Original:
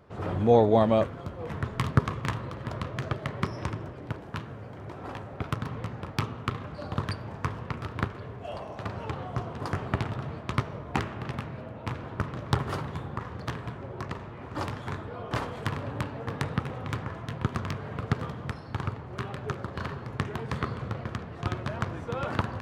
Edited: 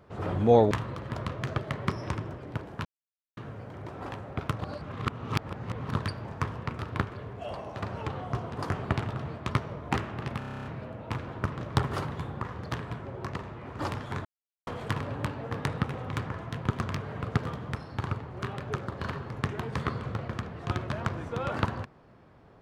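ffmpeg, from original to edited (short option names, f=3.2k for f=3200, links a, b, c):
-filter_complex "[0:a]asplit=16[a][b][c][d][e][f][g][h][i][j][k][l][m][n][o][p];[a]atrim=end=0.712[q];[b]atrim=start=2.258:end=4.4,asetpts=PTS-STARTPTS,afade=t=out:st=2.138:d=0.004:c=hsin,apad=pad_dur=0.52[r];[c]atrim=start=4.4:end=5.622,asetpts=PTS-STARTPTS,afade=t=in:d=0.004:c=hsin[s];[d]atrim=start=5.618:end=6.972,asetpts=PTS-STARTPTS,areverse[t];[e]atrim=start=6.968:end=11.442[u];[f]atrim=start=11.408:end=11.442[v];[g]atrim=start=11.408:end=11.442[w];[h]atrim=start=11.408:end=11.442[x];[i]atrim=start=11.408:end=11.442[y];[j]atrim=start=11.408:end=11.442[z];[k]atrim=start=11.408:end=11.442[aa];[l]atrim=start=11.408:end=11.442[ab];[m]atrim=start=11.408:end=11.442[ac];[n]atrim=start=11.408:end=15.01,asetpts=PTS-STARTPTS,afade=t=out:st=3.598:d=0.004:c=hsin[ad];[o]atrim=start=15.01:end=15.43,asetpts=PTS-STARTPTS,volume=0[ae];[p]atrim=start=15.43,asetpts=PTS-STARTPTS,afade=t=in:d=0.004:c=hsin[af];[r][s]concat=n=2:v=0:a=1[ag];[q][ag]acrossfade=d=0.004:c1=hsin:c2=hsin[ah];[ah][t]acrossfade=d=0.004:c1=hsin:c2=hsin[ai];[ai][u]acrossfade=d=0.004:c1=hsin:c2=hsin[aj];[aj][v]acrossfade=d=0.004:c1=hsin:c2=hsin[ak];[ak][w]acrossfade=d=0.004:c1=hsin:c2=hsin[al];[al][x]acrossfade=d=0.004:c1=hsin:c2=hsin[am];[am][y]acrossfade=d=0.004:c1=hsin:c2=hsin[an];[an][z]acrossfade=d=0.004:c1=hsin:c2=hsin[ao];[ao][aa]acrossfade=d=0.004:c1=hsin:c2=hsin[ap];[ap][ab]acrossfade=d=0.004:c1=hsin:c2=hsin[aq];[aq][ac]acrossfade=d=0.004:c1=hsin:c2=hsin[ar];[ad][ae][af]concat=n=3:v=0:a=1[as];[ar][as]acrossfade=d=0.004:c1=hsin:c2=hsin"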